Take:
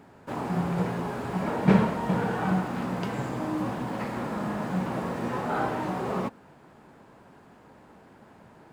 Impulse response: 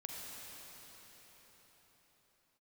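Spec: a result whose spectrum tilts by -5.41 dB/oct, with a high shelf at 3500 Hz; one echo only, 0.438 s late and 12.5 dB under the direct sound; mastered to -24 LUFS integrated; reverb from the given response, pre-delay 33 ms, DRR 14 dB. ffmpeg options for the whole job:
-filter_complex "[0:a]highshelf=f=3.5k:g=-7,aecho=1:1:438:0.237,asplit=2[a][b];[1:a]atrim=start_sample=2205,adelay=33[c];[b][c]afir=irnorm=-1:irlink=0,volume=-13dB[d];[a][d]amix=inputs=2:normalize=0,volume=4.5dB"

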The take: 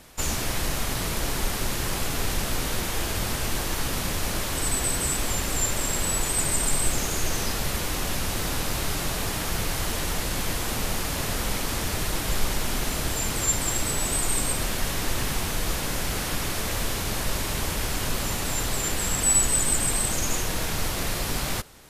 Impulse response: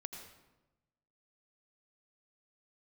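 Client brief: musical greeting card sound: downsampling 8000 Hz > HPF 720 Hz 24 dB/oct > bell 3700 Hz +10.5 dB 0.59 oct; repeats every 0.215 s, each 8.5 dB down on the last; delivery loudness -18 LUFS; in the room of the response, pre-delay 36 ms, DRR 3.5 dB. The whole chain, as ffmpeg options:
-filter_complex "[0:a]aecho=1:1:215|430|645|860:0.376|0.143|0.0543|0.0206,asplit=2[a][b];[1:a]atrim=start_sample=2205,adelay=36[c];[b][c]afir=irnorm=-1:irlink=0,volume=-0.5dB[d];[a][d]amix=inputs=2:normalize=0,aresample=8000,aresample=44100,highpass=f=720:w=0.5412,highpass=f=720:w=1.3066,equalizer=f=3.7k:t=o:w=0.59:g=10.5,volume=9dB"

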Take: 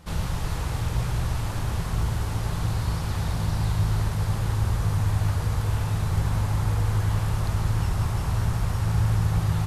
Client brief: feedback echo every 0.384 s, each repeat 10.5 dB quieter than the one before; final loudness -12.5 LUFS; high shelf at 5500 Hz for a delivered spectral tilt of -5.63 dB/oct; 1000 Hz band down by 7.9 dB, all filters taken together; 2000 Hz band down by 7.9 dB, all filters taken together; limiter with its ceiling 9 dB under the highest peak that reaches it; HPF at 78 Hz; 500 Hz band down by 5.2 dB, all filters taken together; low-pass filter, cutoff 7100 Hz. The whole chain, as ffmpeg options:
-af "highpass=78,lowpass=7.1k,equalizer=f=500:t=o:g=-4.5,equalizer=f=1k:t=o:g=-6.5,equalizer=f=2k:t=o:g=-9,highshelf=f=5.5k:g=8.5,alimiter=limit=-24dB:level=0:latency=1,aecho=1:1:384|768|1152:0.299|0.0896|0.0269,volume=19dB"

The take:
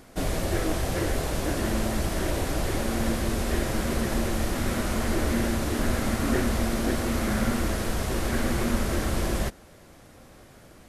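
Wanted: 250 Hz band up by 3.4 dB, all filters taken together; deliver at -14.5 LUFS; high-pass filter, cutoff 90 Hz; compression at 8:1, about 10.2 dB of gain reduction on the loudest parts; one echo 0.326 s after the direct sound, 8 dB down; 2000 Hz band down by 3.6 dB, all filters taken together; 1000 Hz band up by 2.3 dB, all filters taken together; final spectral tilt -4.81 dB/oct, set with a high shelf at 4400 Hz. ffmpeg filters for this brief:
-af "highpass=90,equalizer=f=250:t=o:g=4,equalizer=f=1k:t=o:g=4.5,equalizer=f=2k:t=o:g=-7,highshelf=f=4.4k:g=3.5,acompressor=threshold=-30dB:ratio=8,aecho=1:1:326:0.398,volume=18.5dB"

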